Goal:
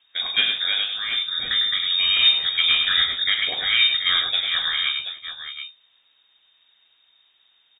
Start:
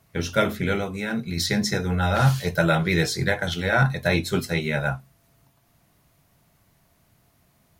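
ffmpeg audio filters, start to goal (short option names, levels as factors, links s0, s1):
-af "aecho=1:1:44|102|397|730:0.266|0.501|0.126|0.316,lowpass=f=3200:t=q:w=0.5098,lowpass=f=3200:t=q:w=0.6013,lowpass=f=3200:t=q:w=0.9,lowpass=f=3200:t=q:w=2.563,afreqshift=-3800"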